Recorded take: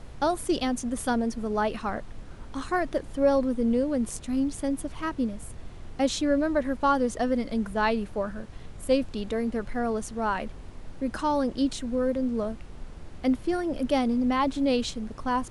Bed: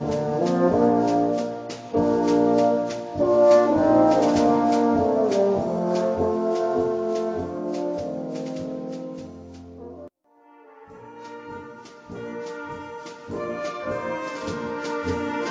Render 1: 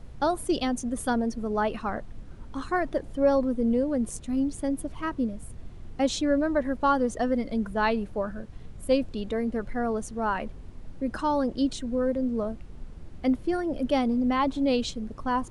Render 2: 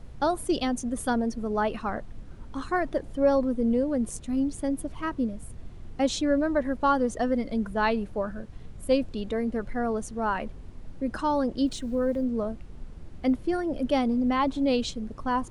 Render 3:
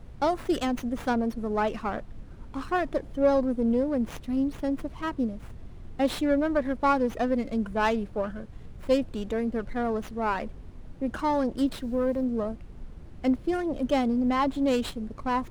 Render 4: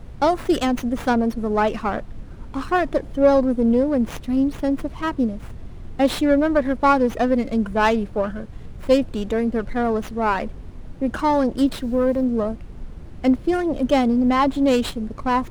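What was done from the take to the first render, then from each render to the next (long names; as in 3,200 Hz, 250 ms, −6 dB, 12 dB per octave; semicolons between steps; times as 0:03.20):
broadband denoise 7 dB, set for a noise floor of −43 dBFS
0:11.66–0:12.24: centre clipping without the shift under −50.5 dBFS
windowed peak hold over 5 samples
level +7 dB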